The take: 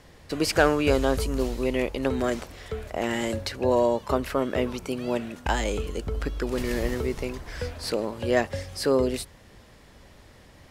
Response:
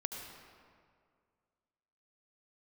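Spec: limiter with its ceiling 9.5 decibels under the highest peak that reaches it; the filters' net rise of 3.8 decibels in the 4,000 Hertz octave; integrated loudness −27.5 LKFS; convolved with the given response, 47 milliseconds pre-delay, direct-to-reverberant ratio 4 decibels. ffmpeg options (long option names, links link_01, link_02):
-filter_complex "[0:a]equalizer=frequency=4000:width_type=o:gain=5,alimiter=limit=-16dB:level=0:latency=1,asplit=2[link_01][link_02];[1:a]atrim=start_sample=2205,adelay=47[link_03];[link_02][link_03]afir=irnorm=-1:irlink=0,volume=-4.5dB[link_04];[link_01][link_04]amix=inputs=2:normalize=0"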